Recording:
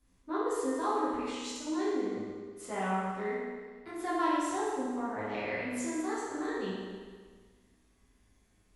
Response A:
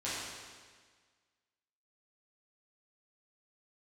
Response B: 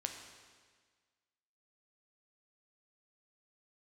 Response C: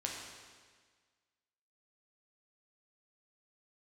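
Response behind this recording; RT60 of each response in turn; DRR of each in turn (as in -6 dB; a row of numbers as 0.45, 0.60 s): A; 1.6, 1.6, 1.6 s; -10.5, 3.5, -1.5 dB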